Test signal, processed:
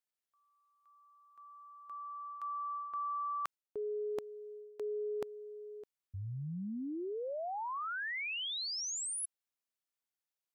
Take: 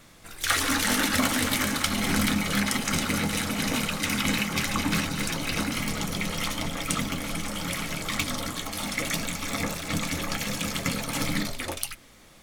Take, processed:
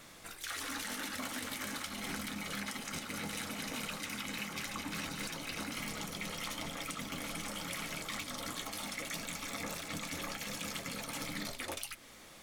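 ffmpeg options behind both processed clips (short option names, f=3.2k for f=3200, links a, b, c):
-af "lowshelf=f=180:g=-9,alimiter=limit=-18.5dB:level=0:latency=1:release=264,areverse,acompressor=threshold=-38dB:ratio=5,areverse"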